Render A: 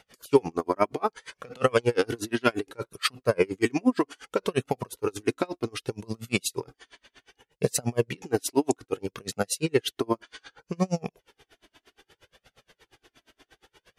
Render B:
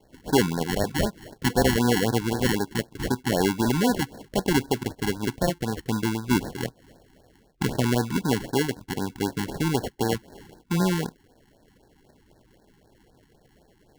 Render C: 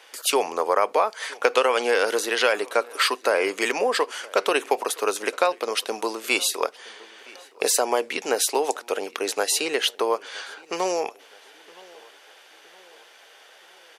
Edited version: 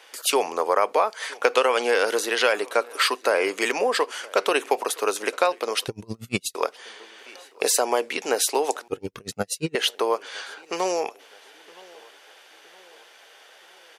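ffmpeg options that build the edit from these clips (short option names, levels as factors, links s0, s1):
-filter_complex "[0:a]asplit=2[s0][s1];[2:a]asplit=3[s2][s3][s4];[s2]atrim=end=5.882[s5];[s0]atrim=start=5.878:end=6.552[s6];[s3]atrim=start=6.548:end=8.882[s7];[s1]atrim=start=8.878:end=9.752[s8];[s4]atrim=start=9.748[s9];[s5][s6]acrossfade=d=0.004:c1=hsin:c2=hsin[s10];[s10][s7]acrossfade=d=0.004:c1=hsin:c2=hsin[s11];[s11][s8]acrossfade=d=0.004:c1=hsin:c2=hsin[s12];[s12][s9]acrossfade=d=0.004:c1=hsin:c2=hsin"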